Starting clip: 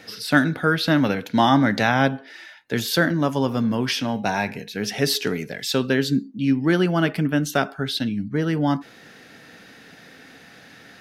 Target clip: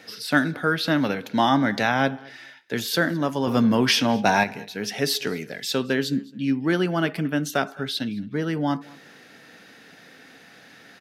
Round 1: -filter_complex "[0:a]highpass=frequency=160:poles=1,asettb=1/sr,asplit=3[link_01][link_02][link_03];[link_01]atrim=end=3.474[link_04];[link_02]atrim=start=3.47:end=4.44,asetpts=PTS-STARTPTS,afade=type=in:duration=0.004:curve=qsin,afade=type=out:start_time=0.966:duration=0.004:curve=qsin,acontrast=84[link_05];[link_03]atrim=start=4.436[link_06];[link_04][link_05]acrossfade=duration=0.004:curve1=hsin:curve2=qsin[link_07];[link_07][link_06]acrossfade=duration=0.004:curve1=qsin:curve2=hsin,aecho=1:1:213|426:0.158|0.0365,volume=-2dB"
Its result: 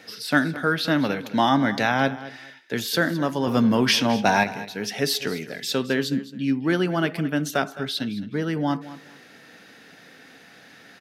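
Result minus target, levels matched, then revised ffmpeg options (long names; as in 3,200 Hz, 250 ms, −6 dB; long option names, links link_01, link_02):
echo-to-direct +8 dB
-filter_complex "[0:a]highpass=frequency=160:poles=1,asettb=1/sr,asplit=3[link_01][link_02][link_03];[link_01]atrim=end=3.474[link_04];[link_02]atrim=start=3.47:end=4.44,asetpts=PTS-STARTPTS,afade=type=in:duration=0.004:curve=qsin,afade=type=out:start_time=0.966:duration=0.004:curve=qsin,acontrast=84[link_05];[link_03]atrim=start=4.436[link_06];[link_04][link_05]acrossfade=duration=0.004:curve1=hsin:curve2=qsin[link_07];[link_07][link_06]acrossfade=duration=0.004:curve1=qsin:curve2=hsin,aecho=1:1:213|426:0.0631|0.0145,volume=-2dB"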